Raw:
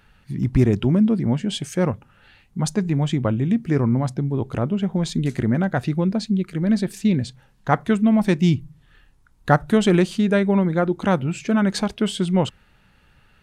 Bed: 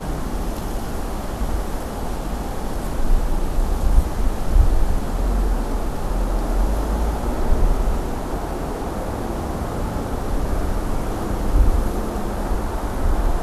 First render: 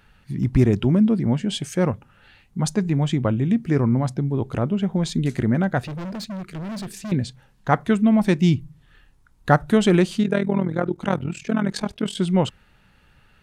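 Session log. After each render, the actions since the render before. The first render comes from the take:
0:05.82–0:07.12: gain into a clipping stage and back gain 29 dB
0:10.23–0:12.17: amplitude modulation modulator 41 Hz, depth 70%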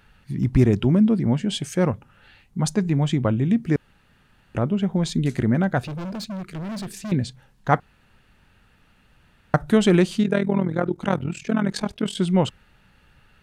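0:03.76–0:04.55: fill with room tone
0:05.76–0:06.37: notch filter 1,900 Hz, Q 8.1
0:07.80–0:09.54: fill with room tone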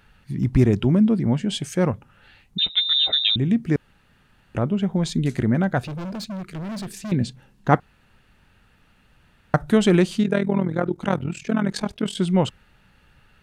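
0:02.58–0:03.36: voice inversion scrambler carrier 3,800 Hz
0:07.20–0:07.75: hollow resonant body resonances 220/330/2,700 Hz, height 8 dB, ringing for 30 ms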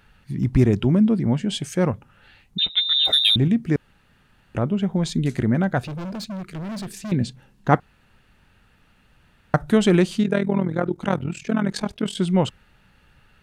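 0:03.05–0:03.48: leveller curve on the samples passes 1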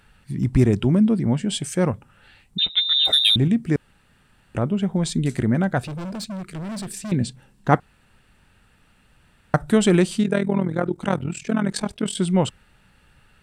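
parametric band 8,300 Hz +8.5 dB 0.57 octaves
notch filter 6,600 Hz, Q 15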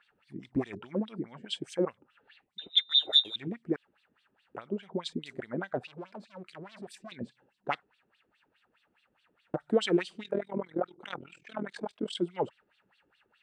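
asymmetric clip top −13 dBFS
LFO wah 4.8 Hz 320–4,000 Hz, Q 3.9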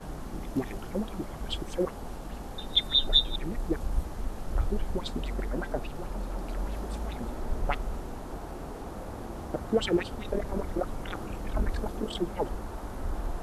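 mix in bed −13.5 dB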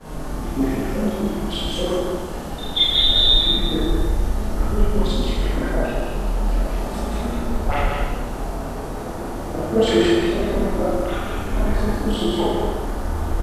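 on a send: single-tap delay 177 ms −4 dB
on the sum: four-comb reverb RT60 1.2 s, combs from 26 ms, DRR −9.5 dB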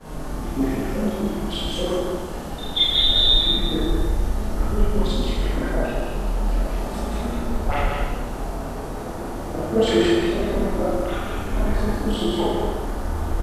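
level −1.5 dB

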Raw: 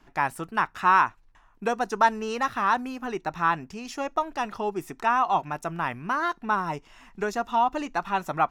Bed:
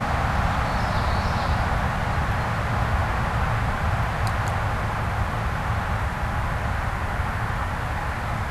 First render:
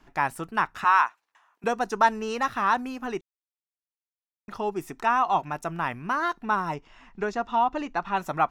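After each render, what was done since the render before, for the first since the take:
0:00.84–0:01.64: high-pass filter 690 Hz
0:03.21–0:04.48: silence
0:06.74–0:08.17: high-frequency loss of the air 100 metres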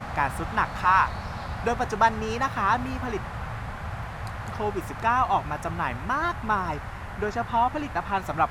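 mix in bed −10.5 dB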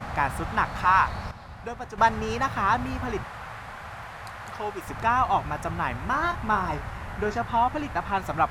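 0:01.31–0:01.98: clip gain −9.5 dB
0:03.23–0:04.88: low-shelf EQ 350 Hz −12 dB
0:05.99–0:07.38: double-tracking delay 33 ms −8.5 dB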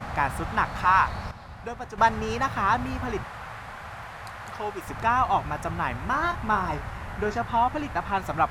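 no processing that can be heard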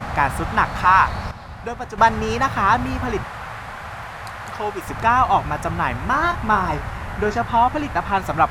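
level +6.5 dB
brickwall limiter −3 dBFS, peak gain reduction 1.5 dB

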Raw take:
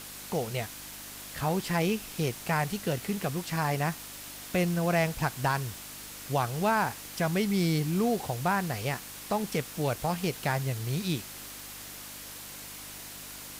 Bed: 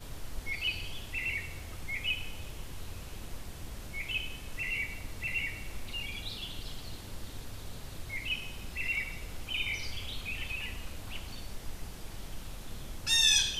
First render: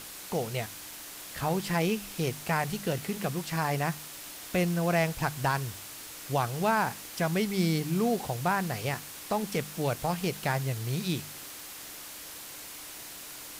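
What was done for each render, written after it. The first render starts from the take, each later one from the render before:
hum removal 50 Hz, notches 5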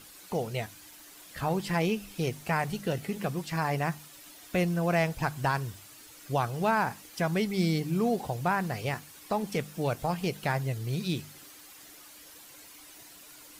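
broadband denoise 10 dB, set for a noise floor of −44 dBFS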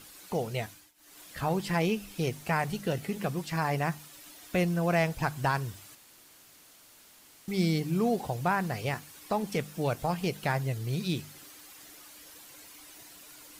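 0:00.68–0:01.20: duck −21.5 dB, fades 0.26 s
0:05.95–0:07.48: fill with room tone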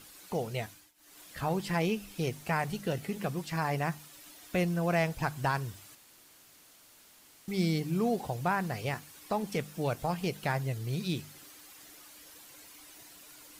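level −2 dB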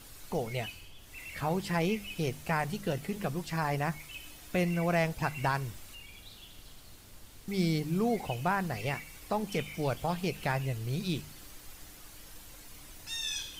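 mix in bed −11.5 dB

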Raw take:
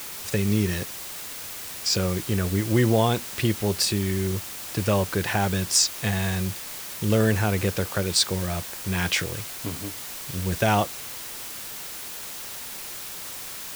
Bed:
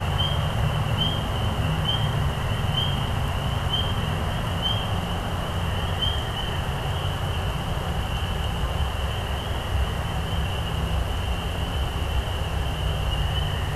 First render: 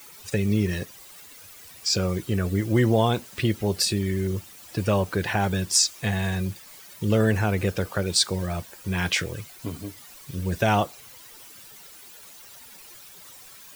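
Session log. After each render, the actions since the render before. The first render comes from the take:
broadband denoise 13 dB, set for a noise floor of −37 dBFS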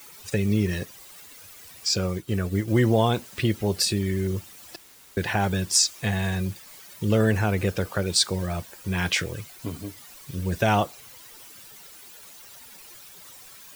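0:01.91–0:02.68: expander for the loud parts, over −40 dBFS
0:04.76–0:05.17: fill with room tone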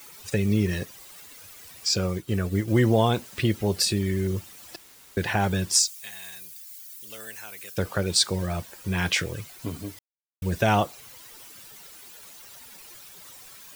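0:05.79–0:07.78: first difference
0:09.99–0:10.42: silence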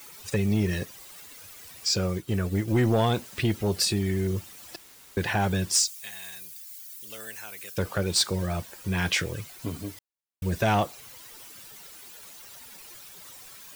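soft clipping −15 dBFS, distortion −16 dB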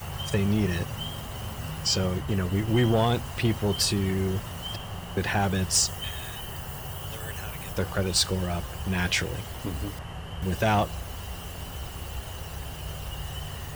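mix in bed −11 dB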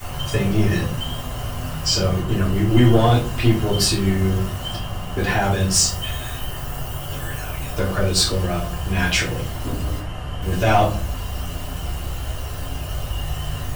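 rectangular room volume 190 cubic metres, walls furnished, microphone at 3.2 metres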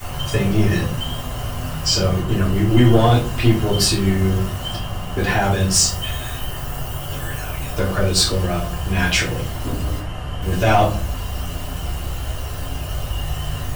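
level +1.5 dB
brickwall limiter −3 dBFS, peak gain reduction 1.5 dB

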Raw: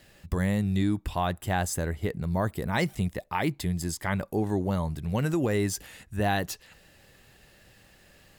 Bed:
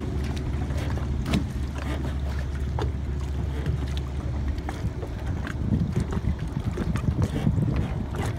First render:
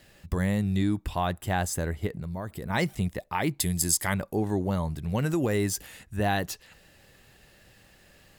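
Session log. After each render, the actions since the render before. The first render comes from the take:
0:02.07–0:02.70: downward compressor 5 to 1, threshold −31 dBFS
0:03.60–0:04.14: parametric band 11,000 Hz +15 dB 2 octaves
0:05.30–0:05.99: high-shelf EQ 8,800 Hz +5 dB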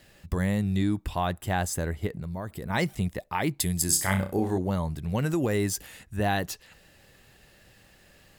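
0:03.86–0:04.58: flutter between parallel walls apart 5.4 metres, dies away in 0.32 s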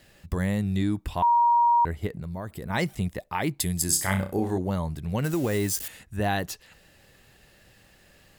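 0:01.22–0:01.85: beep over 947 Hz −16.5 dBFS
0:05.24–0:05.88: spike at every zero crossing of −28.5 dBFS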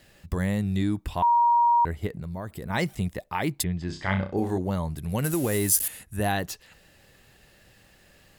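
0:03.62–0:04.36: low-pass filter 2,600 Hz → 5,400 Hz 24 dB per octave
0:04.97–0:06.32: parametric band 11,000 Hz +14 dB 0.6 octaves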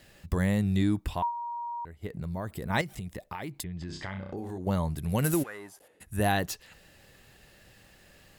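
0:01.10–0:02.21: duck −16 dB, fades 0.22 s
0:02.81–0:04.67: downward compressor 8 to 1, threshold −33 dBFS
0:05.42–0:06.00: resonant band-pass 1,800 Hz → 350 Hz, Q 2.9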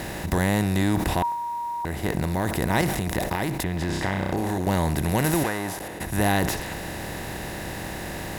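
compressor on every frequency bin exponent 0.4
level that may fall only so fast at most 50 dB per second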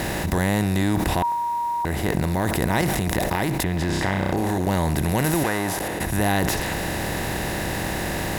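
envelope flattener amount 50%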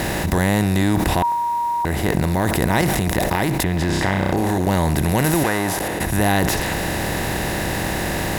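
level +3.5 dB
brickwall limiter −1 dBFS, peak gain reduction 2.5 dB

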